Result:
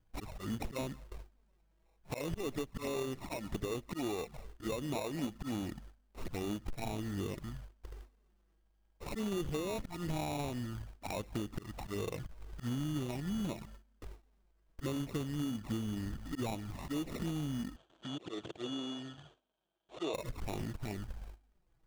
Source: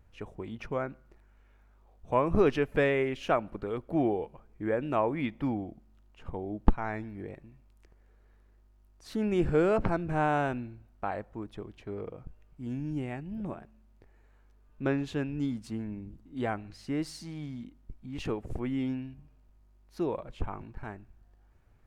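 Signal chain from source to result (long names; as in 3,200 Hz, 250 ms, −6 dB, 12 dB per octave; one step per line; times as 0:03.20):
spectral magnitudes quantised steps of 15 dB
noise gate with hold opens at −49 dBFS
speech leveller within 3 dB 0.5 s
volume swells 225 ms
downward compressor 8 to 1, threshold −45 dBFS, peak gain reduction 21 dB
decimation without filtering 28×
flanger swept by the level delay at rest 6.7 ms, full sweep at −44 dBFS
floating-point word with a short mantissa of 2 bits
0:17.76–0:20.14: loudspeaker in its box 220–7,000 Hz, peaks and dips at 230 Hz −9 dB, 330 Hz +3 dB, 660 Hz +5 dB, 2,000 Hz −7 dB, 3,300 Hz +10 dB, 5,100 Hz −9 dB
level +11.5 dB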